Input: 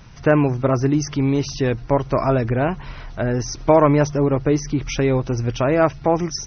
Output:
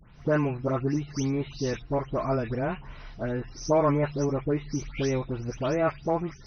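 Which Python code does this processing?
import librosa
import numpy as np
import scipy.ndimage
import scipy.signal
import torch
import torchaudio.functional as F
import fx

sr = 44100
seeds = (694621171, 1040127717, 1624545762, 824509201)

y = fx.spec_delay(x, sr, highs='late', ms=215)
y = y * 10.0 ** (-8.5 / 20.0)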